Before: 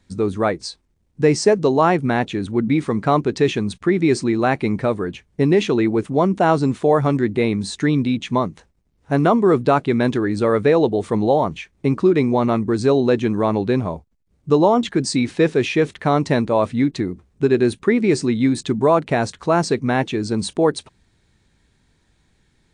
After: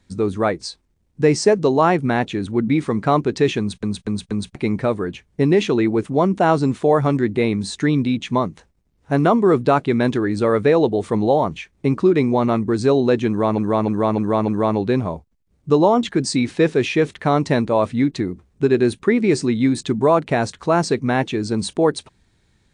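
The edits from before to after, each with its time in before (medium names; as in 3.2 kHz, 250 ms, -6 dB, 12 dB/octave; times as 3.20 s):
3.59 s: stutter in place 0.24 s, 4 plays
13.28–13.58 s: loop, 5 plays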